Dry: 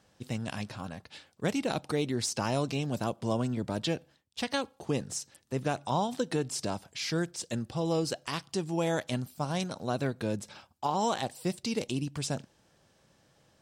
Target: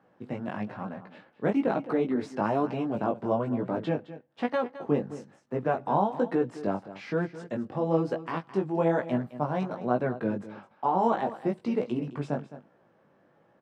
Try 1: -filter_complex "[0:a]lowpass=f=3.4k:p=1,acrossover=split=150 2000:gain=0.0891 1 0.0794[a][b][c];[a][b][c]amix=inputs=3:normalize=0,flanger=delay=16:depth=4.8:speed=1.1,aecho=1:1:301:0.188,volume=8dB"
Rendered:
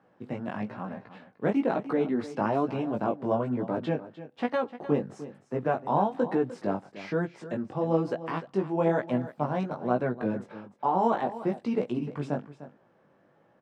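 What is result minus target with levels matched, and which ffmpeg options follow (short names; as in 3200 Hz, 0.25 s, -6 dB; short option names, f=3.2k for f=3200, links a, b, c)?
echo 88 ms late
-filter_complex "[0:a]lowpass=f=3.4k:p=1,acrossover=split=150 2000:gain=0.0891 1 0.0794[a][b][c];[a][b][c]amix=inputs=3:normalize=0,flanger=delay=16:depth=4.8:speed=1.1,aecho=1:1:213:0.188,volume=8dB"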